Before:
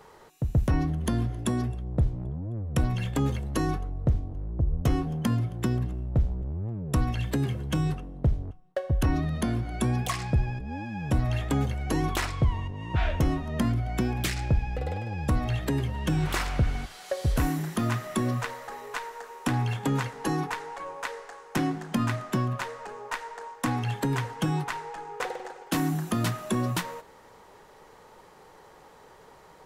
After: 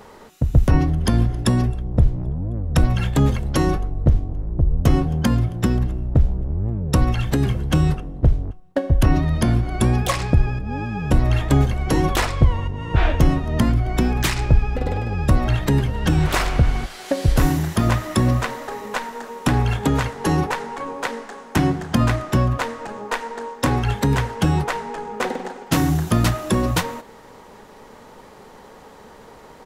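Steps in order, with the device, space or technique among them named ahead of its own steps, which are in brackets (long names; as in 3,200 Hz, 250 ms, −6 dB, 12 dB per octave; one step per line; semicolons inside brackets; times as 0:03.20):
octave pedal (pitch-shifted copies added −12 semitones −3 dB)
level +7 dB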